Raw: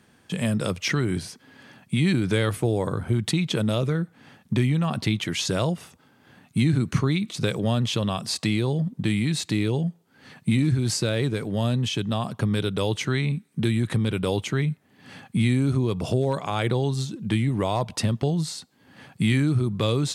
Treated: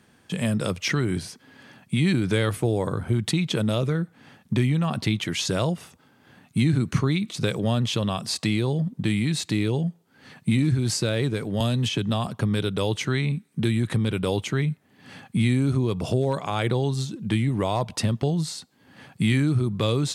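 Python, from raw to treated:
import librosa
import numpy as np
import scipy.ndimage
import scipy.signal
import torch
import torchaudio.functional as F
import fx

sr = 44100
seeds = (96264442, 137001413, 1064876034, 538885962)

y = fx.band_squash(x, sr, depth_pct=100, at=(11.6, 12.27))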